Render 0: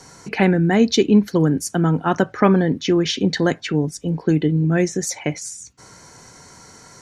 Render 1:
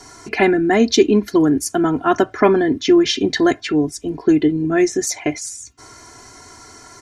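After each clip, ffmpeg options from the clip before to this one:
ffmpeg -i in.wav -af "aecho=1:1:2.9:0.8,volume=1dB" out.wav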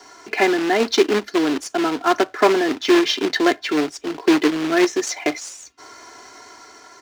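ffmpeg -i in.wav -filter_complex "[0:a]dynaudnorm=framelen=320:gausssize=5:maxgain=3.5dB,acrusher=bits=2:mode=log:mix=0:aa=0.000001,acrossover=split=290 6000:gain=0.112 1 0.158[link_01][link_02][link_03];[link_01][link_02][link_03]amix=inputs=3:normalize=0,volume=-1dB" out.wav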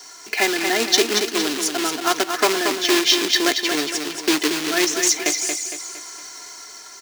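ffmpeg -i in.wav -filter_complex "[0:a]crystalizer=i=6.5:c=0,asplit=2[link_01][link_02];[link_02]aecho=0:1:230|460|690|920|1150:0.501|0.221|0.097|0.0427|0.0188[link_03];[link_01][link_03]amix=inputs=2:normalize=0,volume=-6.5dB" out.wav

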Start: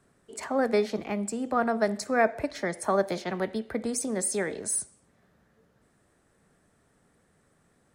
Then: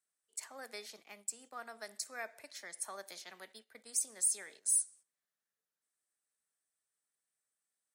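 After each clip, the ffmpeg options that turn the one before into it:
ffmpeg -i in.wav -af "aderivative,agate=range=-11dB:threshold=-54dB:ratio=16:detection=peak,volume=-2.5dB" out.wav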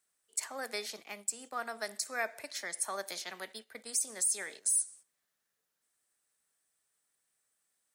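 ffmpeg -i in.wav -af "alimiter=level_in=4dB:limit=-24dB:level=0:latency=1:release=114,volume=-4dB,volume=8.5dB" out.wav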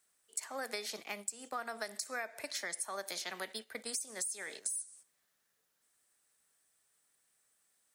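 ffmpeg -i in.wav -af "acompressor=threshold=-40dB:ratio=12,volume=4.5dB" out.wav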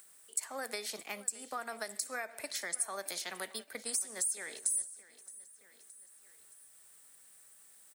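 ffmpeg -i in.wav -af "aecho=1:1:620|1240|1860:0.112|0.0404|0.0145,acompressor=mode=upward:threshold=-53dB:ratio=2.5,aexciter=amount=2.6:drive=1:freq=8100" out.wav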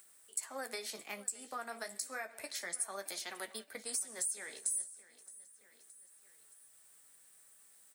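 ffmpeg -i in.wav -af "flanger=delay=7.8:depth=9.7:regen=-38:speed=0.3:shape=triangular,volume=1dB" out.wav

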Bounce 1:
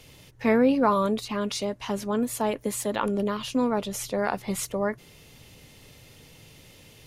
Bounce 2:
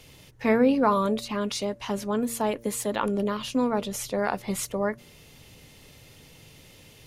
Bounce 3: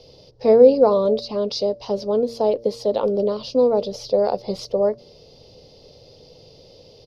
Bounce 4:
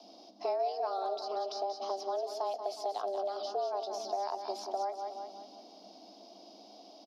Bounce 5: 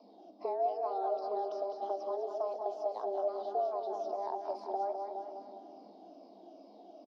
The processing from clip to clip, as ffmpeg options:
ffmpeg -i in.wav -af "bandreject=frequency=116:width_type=h:width=4,bandreject=frequency=232:width_type=h:width=4,bandreject=frequency=348:width_type=h:width=4,bandreject=frequency=464:width_type=h:width=4,bandreject=frequency=580:width_type=h:width=4" out.wav
ffmpeg -i in.wav -af "firequalizer=gain_entry='entry(280,0);entry(490,14);entry(950,-2);entry(1700,-16);entry(4900,11);entry(7400,-21)':delay=0.05:min_phase=1" out.wav
ffmpeg -i in.wav -filter_complex "[0:a]aecho=1:1:181|362|543|724|905:0.299|0.128|0.0552|0.0237|0.0102,acrossover=split=1800|3900[link_01][link_02][link_03];[link_01]acompressor=threshold=-27dB:ratio=4[link_04];[link_02]acompressor=threshold=-50dB:ratio=4[link_05];[link_03]acompressor=threshold=-41dB:ratio=4[link_06];[link_04][link_05][link_06]amix=inputs=3:normalize=0,afreqshift=190,volume=-6.5dB" out.wav
ffmpeg -i in.wav -filter_complex "[0:a]afftfilt=real='re*pow(10,10/40*sin(2*PI*(0.94*log(max(b,1)*sr/1024/100)/log(2)-(-2.4)*(pts-256)/sr)))':imag='im*pow(10,10/40*sin(2*PI*(0.94*log(max(b,1)*sr/1024/100)/log(2)-(-2.4)*(pts-256)/sr)))':win_size=1024:overlap=0.75,bandpass=frequency=360:width_type=q:width=0.62:csg=0,asplit=2[link_01][link_02];[link_02]aecho=0:1:206|412|618|824|1030|1236|1442:0.398|0.227|0.129|0.0737|0.042|0.024|0.0137[link_03];[link_01][link_03]amix=inputs=2:normalize=0" out.wav

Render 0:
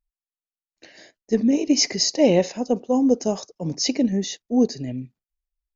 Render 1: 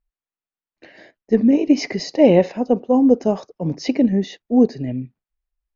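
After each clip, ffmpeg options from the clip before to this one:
ffmpeg -i in.wav -af "lowpass=2400,volume=4.5dB" out.wav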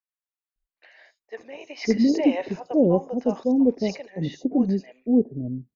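ffmpeg -i in.wav -filter_complex "[0:a]acrossover=split=650|4900[link_01][link_02][link_03];[link_03]adelay=80[link_04];[link_01]adelay=560[link_05];[link_05][link_02][link_04]amix=inputs=3:normalize=0,volume=-4.5dB" out.wav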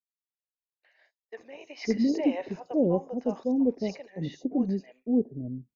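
ffmpeg -i in.wav -af "agate=range=-33dB:threshold=-46dB:ratio=3:detection=peak,adynamicequalizer=threshold=0.0141:dfrequency=1800:dqfactor=0.7:tfrequency=1800:tqfactor=0.7:attack=5:release=100:ratio=0.375:range=1.5:mode=cutabove:tftype=highshelf,volume=-5.5dB" out.wav

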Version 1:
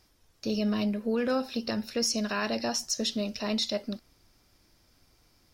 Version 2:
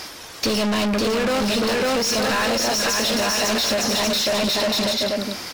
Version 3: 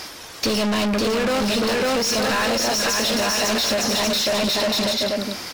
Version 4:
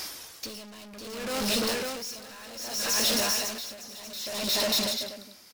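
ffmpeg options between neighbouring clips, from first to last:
ffmpeg -i in.wav -filter_complex "[0:a]aecho=1:1:550|907.5|1140|1291|1389:0.631|0.398|0.251|0.158|0.1,asplit=2[link_01][link_02];[link_02]highpass=frequency=720:poles=1,volume=37dB,asoftclip=type=tanh:threshold=-14.5dB[link_03];[link_01][link_03]amix=inputs=2:normalize=0,lowpass=frequency=5400:poles=1,volume=-6dB,acompressor=threshold=-24dB:ratio=6,volume=4.5dB" out.wav
ffmpeg -i in.wav -af anull out.wav
ffmpeg -i in.wav -af "crystalizer=i=2:c=0,aecho=1:1:245:0.119,aeval=exprs='val(0)*pow(10,-19*(0.5-0.5*cos(2*PI*0.64*n/s))/20)':channel_layout=same,volume=-7.5dB" out.wav

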